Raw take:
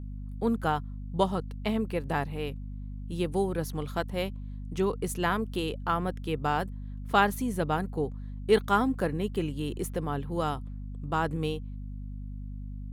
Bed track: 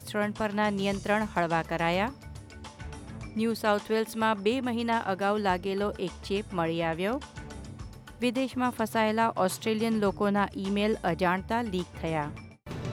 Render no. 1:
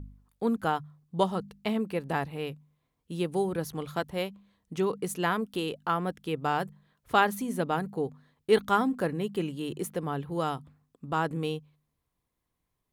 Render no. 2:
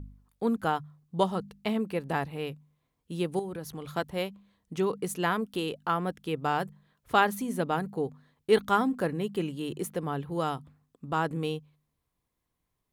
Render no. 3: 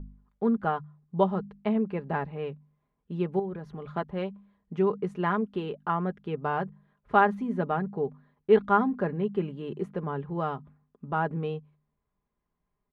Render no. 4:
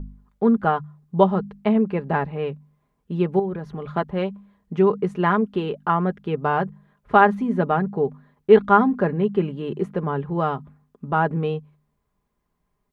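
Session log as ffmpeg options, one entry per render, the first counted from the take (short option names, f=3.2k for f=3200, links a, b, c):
-af "bandreject=f=50:t=h:w=4,bandreject=f=100:t=h:w=4,bandreject=f=150:t=h:w=4,bandreject=f=200:t=h:w=4,bandreject=f=250:t=h:w=4"
-filter_complex "[0:a]asettb=1/sr,asplit=3[a][b][c];[a]atrim=end=3.394[d];[b]atrim=start=3.39:end=3.85,asetpts=PTS-STARTPTS,afade=t=in:d=0.004:c=qsin,afade=t=out:st=0.456:d=0.004:c=qsin,acompressor=threshold=-36dB:ratio=2.5:attack=3.2:release=140:knee=1:detection=peak[e];[c]atrim=start=3.846[f];[d][e]acrossfade=d=0.004:c1=hsin:c2=qsin[g];[g][f]acrossfade=d=0.004:c1=qsin:c2=hsin"
-af "lowpass=1.7k,aecho=1:1:4.9:0.53"
-af "volume=7.5dB,alimiter=limit=-2dB:level=0:latency=1"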